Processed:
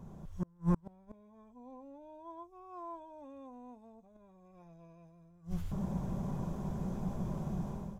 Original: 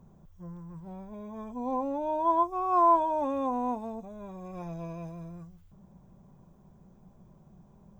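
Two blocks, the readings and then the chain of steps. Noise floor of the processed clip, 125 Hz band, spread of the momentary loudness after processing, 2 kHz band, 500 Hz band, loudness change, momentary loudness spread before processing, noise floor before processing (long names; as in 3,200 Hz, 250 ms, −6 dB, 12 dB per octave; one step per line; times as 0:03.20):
−61 dBFS, +6.5 dB, 21 LU, can't be measured, −14.5 dB, −10.5 dB, 21 LU, −58 dBFS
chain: dynamic equaliser 960 Hz, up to −7 dB, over −39 dBFS, Q 0.99
gate with flip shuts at −37 dBFS, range −37 dB
downsampling to 32,000 Hz
automatic gain control gain up to 13.5 dB
level +5.5 dB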